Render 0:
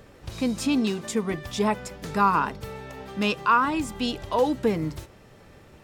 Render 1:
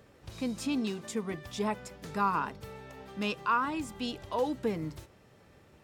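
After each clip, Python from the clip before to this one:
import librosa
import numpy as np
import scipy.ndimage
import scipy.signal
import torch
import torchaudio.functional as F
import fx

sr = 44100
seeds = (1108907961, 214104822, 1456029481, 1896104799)

y = scipy.signal.sosfilt(scipy.signal.butter(2, 51.0, 'highpass', fs=sr, output='sos'), x)
y = y * 10.0 ** (-8.0 / 20.0)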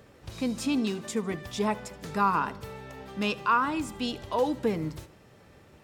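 y = fx.echo_feedback(x, sr, ms=76, feedback_pct=53, wet_db=-21.0)
y = y * 10.0 ** (4.0 / 20.0)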